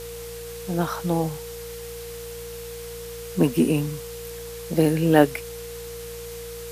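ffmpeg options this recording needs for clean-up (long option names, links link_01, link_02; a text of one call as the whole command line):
ffmpeg -i in.wav -af "adeclick=threshold=4,bandreject=frequency=57.9:width_type=h:width=4,bandreject=frequency=115.8:width_type=h:width=4,bandreject=frequency=173.7:width_type=h:width=4,bandreject=frequency=470:width=30,afftdn=noise_reduction=30:noise_floor=-36" out.wav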